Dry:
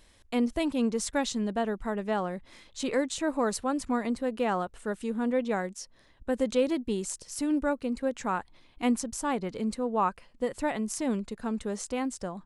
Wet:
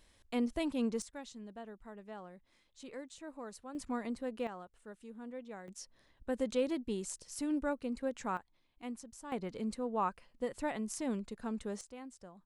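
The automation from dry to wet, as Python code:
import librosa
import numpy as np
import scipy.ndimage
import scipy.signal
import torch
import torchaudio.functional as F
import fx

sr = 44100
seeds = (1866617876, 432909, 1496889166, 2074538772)

y = fx.gain(x, sr, db=fx.steps((0.0, -6.5), (1.02, -18.5), (3.75, -9.0), (4.47, -18.0), (5.68, -7.0), (8.37, -17.0), (9.32, -7.0), (11.81, -17.5)))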